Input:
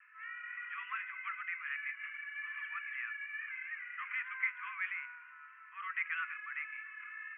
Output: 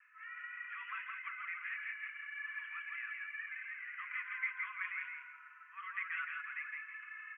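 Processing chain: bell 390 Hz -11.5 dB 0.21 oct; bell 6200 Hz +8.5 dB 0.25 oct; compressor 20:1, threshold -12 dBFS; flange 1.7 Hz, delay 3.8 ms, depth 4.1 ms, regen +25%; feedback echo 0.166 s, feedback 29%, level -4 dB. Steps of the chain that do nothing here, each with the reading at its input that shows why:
bell 390 Hz: input band starts at 960 Hz; bell 6200 Hz: input band ends at 3000 Hz; compressor, threshold -12 dBFS: input peak -21.5 dBFS

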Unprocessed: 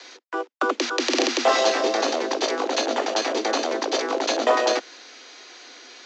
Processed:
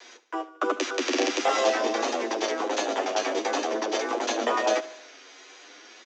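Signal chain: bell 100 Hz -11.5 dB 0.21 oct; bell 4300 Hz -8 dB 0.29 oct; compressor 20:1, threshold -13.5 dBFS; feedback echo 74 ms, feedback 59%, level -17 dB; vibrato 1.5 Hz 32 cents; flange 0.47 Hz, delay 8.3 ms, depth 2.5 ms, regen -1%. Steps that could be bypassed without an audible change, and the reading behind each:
bell 100 Hz: input band starts at 200 Hz

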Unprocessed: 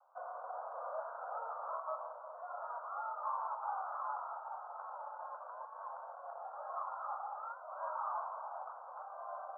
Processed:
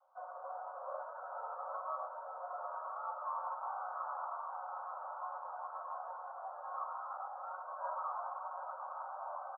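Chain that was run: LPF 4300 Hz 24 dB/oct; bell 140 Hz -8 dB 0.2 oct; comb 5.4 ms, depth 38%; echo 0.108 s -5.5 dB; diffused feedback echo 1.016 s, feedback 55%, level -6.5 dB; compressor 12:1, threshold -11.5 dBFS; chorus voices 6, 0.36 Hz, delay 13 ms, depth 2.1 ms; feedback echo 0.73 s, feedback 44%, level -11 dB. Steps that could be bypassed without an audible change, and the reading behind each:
LPF 4300 Hz: input band ends at 1600 Hz; bell 140 Hz: input band starts at 450 Hz; compressor, threshold -11.5 dBFS: input peak -24.5 dBFS

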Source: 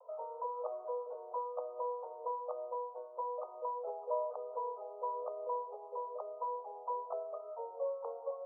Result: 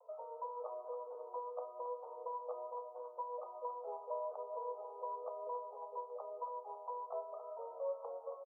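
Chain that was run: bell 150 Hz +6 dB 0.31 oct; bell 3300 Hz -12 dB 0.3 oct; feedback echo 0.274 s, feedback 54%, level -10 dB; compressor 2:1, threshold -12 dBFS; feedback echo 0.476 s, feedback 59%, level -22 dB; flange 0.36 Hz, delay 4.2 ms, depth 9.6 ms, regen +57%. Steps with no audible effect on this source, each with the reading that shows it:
bell 150 Hz: input band starts at 400 Hz; bell 3300 Hz: input band ends at 1300 Hz; compressor, threshold -12 dBFS: input peak -24.0 dBFS

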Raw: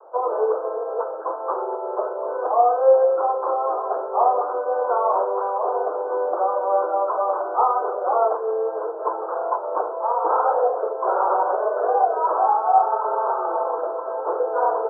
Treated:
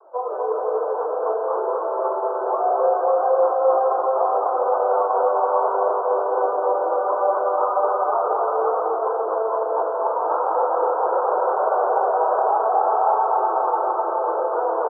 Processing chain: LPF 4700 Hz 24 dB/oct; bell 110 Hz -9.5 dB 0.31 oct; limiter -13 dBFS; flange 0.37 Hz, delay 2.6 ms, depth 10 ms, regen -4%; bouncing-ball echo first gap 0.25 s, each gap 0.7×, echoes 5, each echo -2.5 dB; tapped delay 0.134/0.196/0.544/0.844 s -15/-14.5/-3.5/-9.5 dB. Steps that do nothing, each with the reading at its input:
LPF 4700 Hz: input band ends at 1500 Hz; bell 110 Hz: input band starts at 300 Hz

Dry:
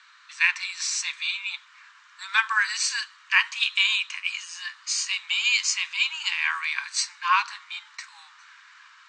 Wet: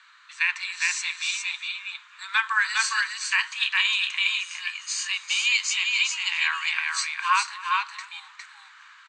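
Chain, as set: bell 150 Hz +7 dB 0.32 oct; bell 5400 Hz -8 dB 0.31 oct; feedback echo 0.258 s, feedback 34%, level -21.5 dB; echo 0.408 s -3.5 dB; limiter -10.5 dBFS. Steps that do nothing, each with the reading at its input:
bell 150 Hz: input band starts at 810 Hz

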